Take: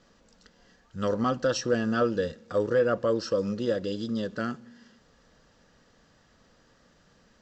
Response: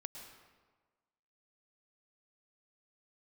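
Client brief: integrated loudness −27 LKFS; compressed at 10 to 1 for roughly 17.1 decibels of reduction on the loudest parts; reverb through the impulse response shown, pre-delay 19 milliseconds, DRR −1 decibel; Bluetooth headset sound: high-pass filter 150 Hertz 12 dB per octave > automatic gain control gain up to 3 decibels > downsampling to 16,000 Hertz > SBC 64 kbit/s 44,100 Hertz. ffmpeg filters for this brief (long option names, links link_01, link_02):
-filter_complex "[0:a]acompressor=threshold=-38dB:ratio=10,asplit=2[link_01][link_02];[1:a]atrim=start_sample=2205,adelay=19[link_03];[link_02][link_03]afir=irnorm=-1:irlink=0,volume=4dB[link_04];[link_01][link_04]amix=inputs=2:normalize=0,highpass=150,dynaudnorm=maxgain=3dB,aresample=16000,aresample=44100,volume=12.5dB" -ar 44100 -c:a sbc -b:a 64k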